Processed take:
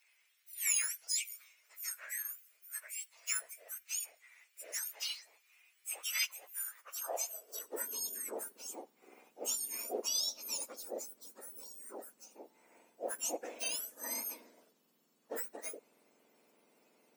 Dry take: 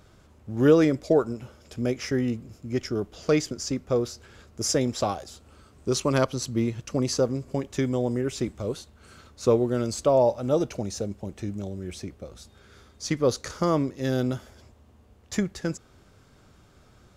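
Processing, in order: spectrum mirrored in octaves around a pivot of 1800 Hz; high-pass sweep 2100 Hz -> 110 Hz, 6.63–8.44; gain -8.5 dB

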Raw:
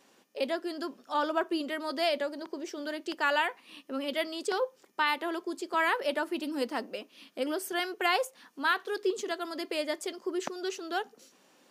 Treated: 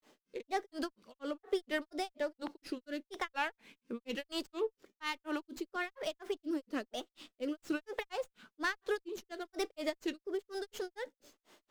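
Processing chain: compressor 6:1, threshold -30 dBFS, peak gain reduction 9 dB; rotary speaker horn 1.1 Hz; grains 0.193 s, grains 4.2/s, spray 17 ms, pitch spread up and down by 3 st; running maximum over 3 samples; gain +4 dB

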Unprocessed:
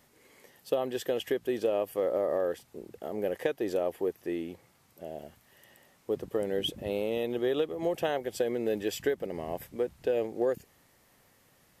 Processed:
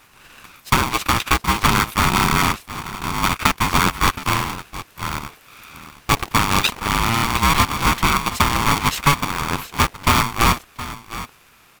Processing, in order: cycle switcher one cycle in 3, inverted; low shelf 180 Hz -11.5 dB; in parallel at -3 dB: vocal rider 2 s; on the sum: graphic EQ 125/500/2000 Hz +4/+5/+9 dB; on a send: echo 0.719 s -14.5 dB; on the sum: polarity switched at an audio rate 570 Hz; gain +5 dB

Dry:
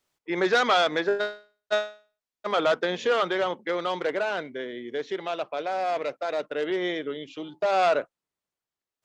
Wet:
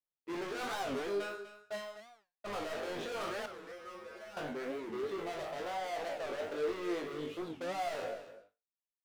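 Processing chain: spectral trails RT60 0.41 s; LPF 1200 Hz 6 dB/oct; limiter -19.5 dBFS, peak gain reduction 7 dB; sample leveller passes 5; resonator 50 Hz, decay 0.23 s, harmonics all, mix 100%; flange 1.2 Hz, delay 8.6 ms, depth 4.7 ms, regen +51%; 3.47–4.37 resonator 74 Hz, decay 0.23 s, harmonics odd, mix 100%; echo 0.246 s -13 dB; record warp 45 rpm, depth 250 cents; gain -7 dB

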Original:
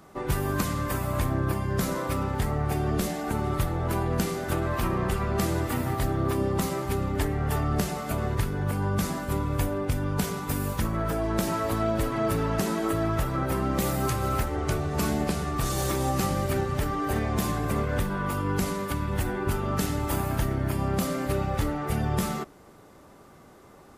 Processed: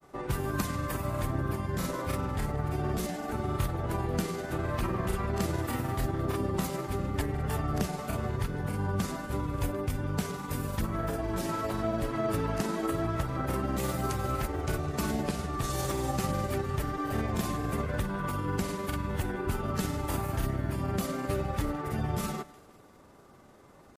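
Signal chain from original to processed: thinning echo 0.173 s, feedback 48%, level -19 dB; grains 0.1 s, spray 27 ms, pitch spread up and down by 0 st; gain -3 dB

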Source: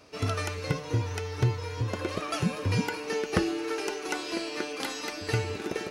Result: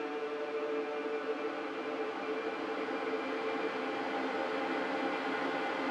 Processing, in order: half-waves squared off; Paulstretch 49×, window 0.25 s, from 4.72; BPF 260–2100 Hz; gain -4 dB

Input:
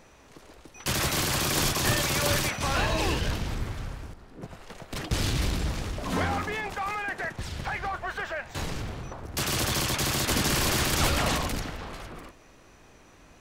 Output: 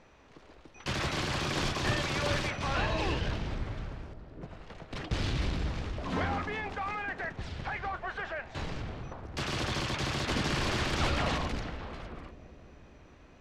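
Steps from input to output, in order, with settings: LPF 4200 Hz 12 dB/oct; on a send: analogue delay 0.198 s, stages 1024, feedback 79%, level -16 dB; on the sum: gain -4 dB

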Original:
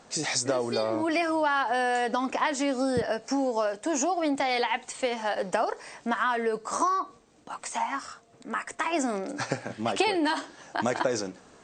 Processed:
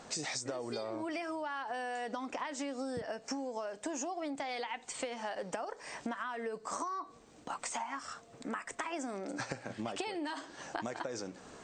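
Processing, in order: compressor 8:1, threshold -38 dBFS, peak gain reduction 18 dB; gain +2 dB

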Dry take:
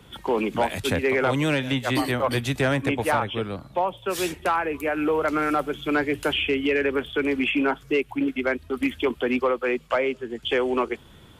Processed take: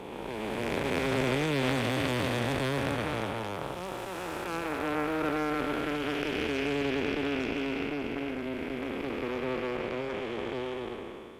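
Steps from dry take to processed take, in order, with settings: time blur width 0.889 s; 3.5–5.61 crackle 350/s -47 dBFS; added harmonics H 3 -13 dB, 6 -26 dB, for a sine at -15.5 dBFS; gain +4 dB

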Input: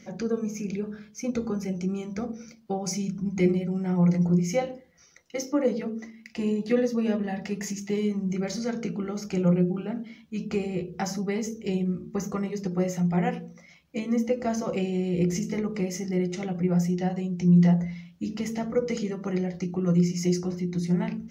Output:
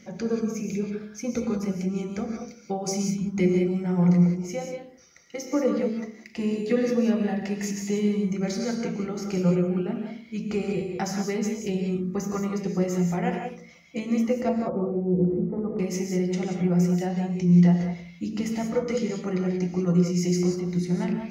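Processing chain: 4.25–5.5 compressor 2.5:1, threshold -31 dBFS, peak gain reduction 9 dB; 14.49–15.79 steep low-pass 1200 Hz 36 dB/oct; non-linear reverb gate 0.21 s rising, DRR 3 dB

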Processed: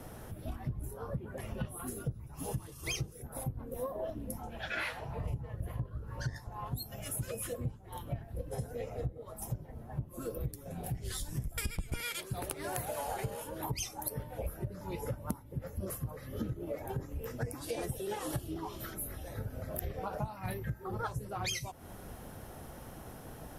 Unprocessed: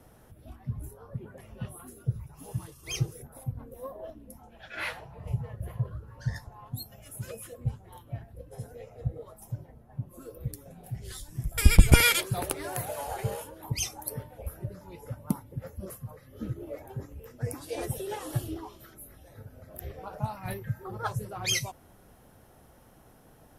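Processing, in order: octaver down 1 oct, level -6 dB; compressor 12:1, threshold -42 dBFS, peak gain reduction 33.5 dB; gain +8.5 dB

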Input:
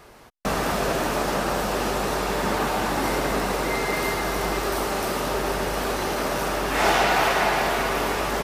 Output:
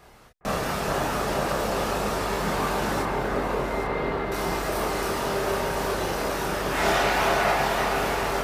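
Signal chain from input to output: 3.02–4.32 air absorption 360 m; chorus voices 4, 0.25 Hz, delay 29 ms, depth 1.2 ms; echo with dull and thin repeats by turns 0.409 s, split 1900 Hz, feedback 54%, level -4 dB

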